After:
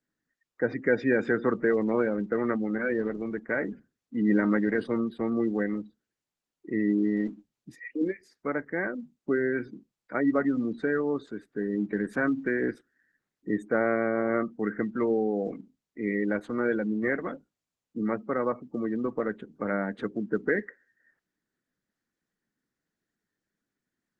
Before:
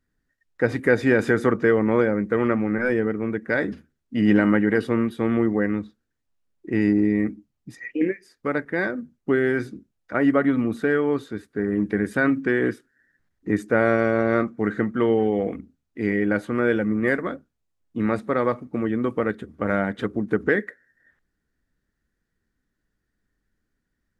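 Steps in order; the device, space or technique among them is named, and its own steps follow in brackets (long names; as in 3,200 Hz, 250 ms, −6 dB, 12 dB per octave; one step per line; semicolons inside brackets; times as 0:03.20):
noise-suppressed video call (high-pass filter 140 Hz 24 dB per octave; gate on every frequency bin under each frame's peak −25 dB strong; level −5.5 dB; Opus 16 kbit/s 48,000 Hz)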